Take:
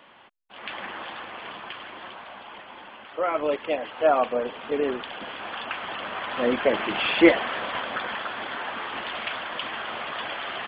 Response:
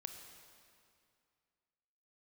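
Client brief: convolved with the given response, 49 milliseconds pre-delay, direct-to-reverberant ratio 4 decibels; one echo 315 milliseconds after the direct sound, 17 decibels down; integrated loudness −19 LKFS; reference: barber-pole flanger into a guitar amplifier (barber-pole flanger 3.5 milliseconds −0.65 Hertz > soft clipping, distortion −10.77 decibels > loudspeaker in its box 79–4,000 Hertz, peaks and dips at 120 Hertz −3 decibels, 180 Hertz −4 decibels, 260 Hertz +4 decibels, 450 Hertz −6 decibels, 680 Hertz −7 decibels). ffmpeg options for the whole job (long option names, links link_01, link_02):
-filter_complex "[0:a]aecho=1:1:315:0.141,asplit=2[link_01][link_02];[1:a]atrim=start_sample=2205,adelay=49[link_03];[link_02][link_03]afir=irnorm=-1:irlink=0,volume=-0.5dB[link_04];[link_01][link_04]amix=inputs=2:normalize=0,asplit=2[link_05][link_06];[link_06]adelay=3.5,afreqshift=-0.65[link_07];[link_05][link_07]amix=inputs=2:normalize=1,asoftclip=threshold=-18.5dB,highpass=79,equalizer=frequency=120:width_type=q:width=4:gain=-3,equalizer=frequency=180:width_type=q:width=4:gain=-4,equalizer=frequency=260:width_type=q:width=4:gain=4,equalizer=frequency=450:width_type=q:width=4:gain=-6,equalizer=frequency=680:width_type=q:width=4:gain=-7,lowpass=frequency=4000:width=0.5412,lowpass=frequency=4000:width=1.3066,volume=13dB"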